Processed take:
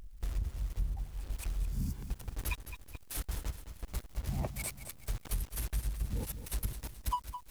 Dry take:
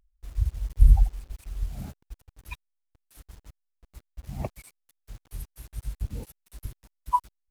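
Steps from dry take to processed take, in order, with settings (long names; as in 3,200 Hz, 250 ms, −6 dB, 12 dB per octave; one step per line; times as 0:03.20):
power curve on the samples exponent 0.7
healed spectral selection 0:01.66–0:01.99, 300–4,400 Hz both
downward compressor 20 to 1, threshold −33 dBFS, peak gain reduction 25.5 dB
feedback echo at a low word length 213 ms, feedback 55%, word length 9 bits, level −9.5 dB
level +2 dB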